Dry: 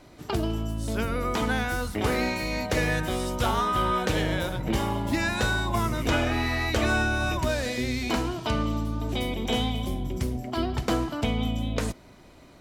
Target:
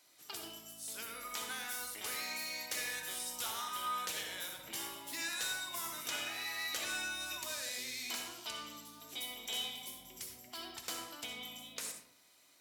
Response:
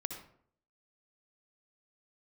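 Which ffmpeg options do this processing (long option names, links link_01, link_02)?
-filter_complex "[0:a]aderivative[link_01];[1:a]atrim=start_sample=2205[link_02];[link_01][link_02]afir=irnorm=-1:irlink=0"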